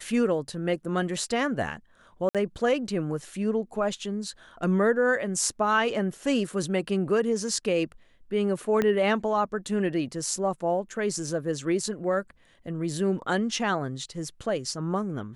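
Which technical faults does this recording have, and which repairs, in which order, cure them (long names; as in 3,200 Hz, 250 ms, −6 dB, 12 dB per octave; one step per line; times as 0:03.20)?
0:02.29–0:02.35: drop-out 57 ms
0:08.82: click −13 dBFS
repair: click removal
repair the gap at 0:02.29, 57 ms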